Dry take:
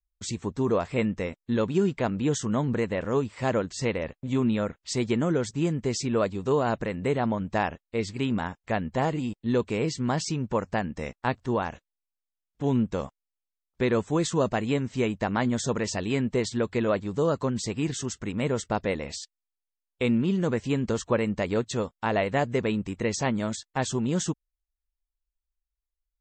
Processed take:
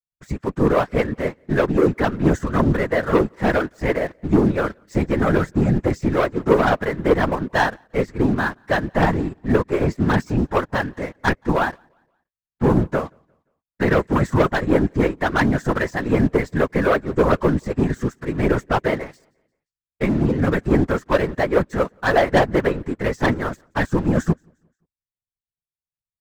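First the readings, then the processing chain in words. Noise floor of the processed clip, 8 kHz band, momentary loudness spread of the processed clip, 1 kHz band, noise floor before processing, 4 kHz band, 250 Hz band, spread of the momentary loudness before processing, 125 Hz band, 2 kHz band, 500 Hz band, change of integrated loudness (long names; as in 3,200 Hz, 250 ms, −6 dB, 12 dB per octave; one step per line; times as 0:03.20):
below −85 dBFS, −7.5 dB, 7 LU, +8.5 dB, below −85 dBFS, +1.5 dB, +6.5 dB, 5 LU, +7.5 dB, +10.5 dB, +7.5 dB, +7.0 dB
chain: high shelf with overshoot 2,300 Hz −10.5 dB, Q 3
comb filter 7.2 ms, depth 89%
leveller curve on the samples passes 3
random phases in short frames
on a send: repeating echo 175 ms, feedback 42%, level −24 dB
on the sum: expander for the loud parts 1.5 to 1, over −35 dBFS
level −2 dB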